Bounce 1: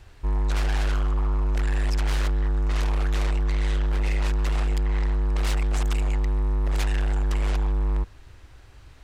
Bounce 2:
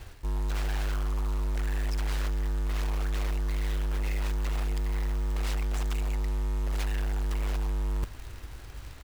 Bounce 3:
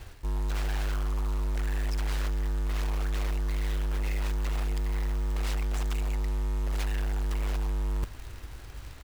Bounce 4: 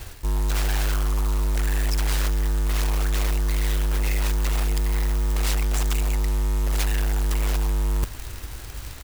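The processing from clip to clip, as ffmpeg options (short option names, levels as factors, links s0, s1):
-af "areverse,acompressor=threshold=0.0251:ratio=8,areverse,acrusher=bits=3:mode=log:mix=0:aa=0.000001,aecho=1:1:824:0.0891,volume=1.58"
-af anull
-af "highshelf=f=5500:g=10.5,volume=2.11"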